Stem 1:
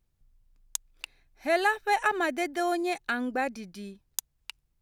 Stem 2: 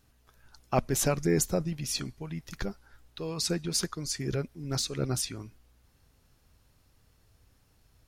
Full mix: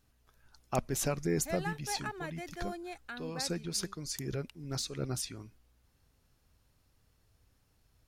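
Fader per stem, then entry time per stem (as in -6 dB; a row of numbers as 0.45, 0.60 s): -14.0, -5.5 dB; 0.00, 0.00 s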